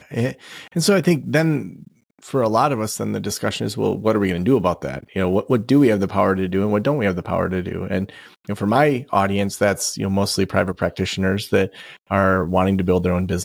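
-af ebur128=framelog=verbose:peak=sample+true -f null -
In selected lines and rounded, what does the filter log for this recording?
Integrated loudness:
  I:         -20.0 LUFS
  Threshold: -30.3 LUFS
Loudness range:
  LRA:         1.8 LU
  Threshold: -40.3 LUFS
  LRA low:   -21.0 LUFS
  LRA high:  -19.2 LUFS
Sample peak:
  Peak:       -2.1 dBFS
True peak:
  Peak:       -2.0 dBFS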